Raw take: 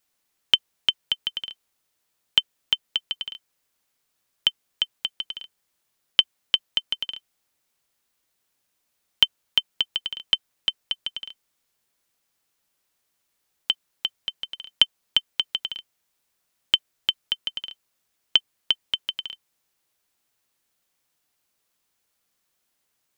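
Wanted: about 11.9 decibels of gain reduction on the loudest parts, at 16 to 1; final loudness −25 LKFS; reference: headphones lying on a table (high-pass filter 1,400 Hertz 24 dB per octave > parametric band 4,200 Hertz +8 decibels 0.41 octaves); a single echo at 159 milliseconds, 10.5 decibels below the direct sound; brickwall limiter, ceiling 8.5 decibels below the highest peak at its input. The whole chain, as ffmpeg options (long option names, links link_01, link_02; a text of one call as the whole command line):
ffmpeg -i in.wav -af "acompressor=threshold=-28dB:ratio=16,alimiter=limit=-14.5dB:level=0:latency=1,highpass=frequency=1400:width=0.5412,highpass=frequency=1400:width=1.3066,equalizer=frequency=4200:width_type=o:width=0.41:gain=8,aecho=1:1:159:0.299,volume=11.5dB" out.wav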